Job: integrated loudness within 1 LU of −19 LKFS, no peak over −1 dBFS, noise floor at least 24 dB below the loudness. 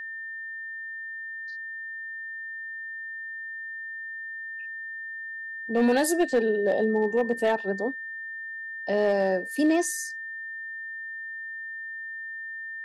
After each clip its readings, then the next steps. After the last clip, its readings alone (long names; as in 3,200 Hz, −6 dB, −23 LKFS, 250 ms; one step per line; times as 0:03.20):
share of clipped samples 0.3%; peaks flattened at −15.5 dBFS; interfering tone 1,800 Hz; level of the tone −34 dBFS; integrated loudness −29.0 LKFS; sample peak −15.5 dBFS; target loudness −19.0 LKFS
→ clipped peaks rebuilt −15.5 dBFS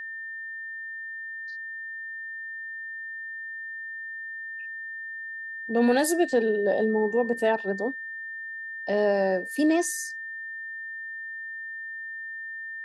share of clipped samples 0.0%; interfering tone 1,800 Hz; level of the tone −34 dBFS
→ notch filter 1,800 Hz, Q 30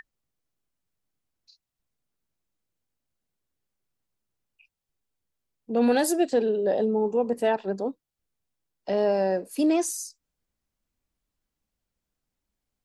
interfering tone none found; integrated loudness −25.0 LKFS; sample peak −12.0 dBFS; target loudness −19.0 LKFS
→ level +6 dB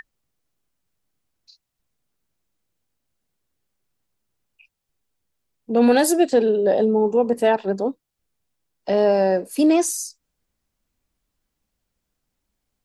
integrated loudness −19.0 LKFS; sample peak −6.0 dBFS; background noise floor −79 dBFS